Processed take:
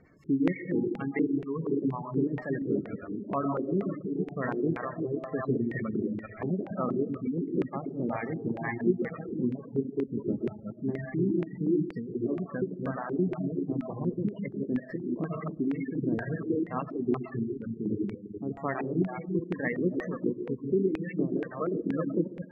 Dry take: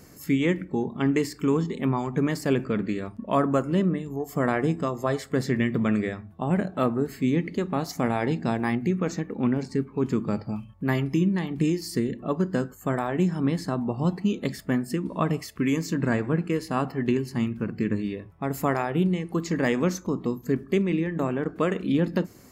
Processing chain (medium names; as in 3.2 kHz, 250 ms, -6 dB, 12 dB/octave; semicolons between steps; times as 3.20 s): chunks repeated in reverse 202 ms, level -3 dB; on a send at -4 dB: reverberation RT60 1.2 s, pre-delay 60 ms; on the sum: spectral gate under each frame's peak -20 dB strong; LFO low-pass square 2.1 Hz 370–2200 Hz; reverb removal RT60 0.97 s; trim -8.5 dB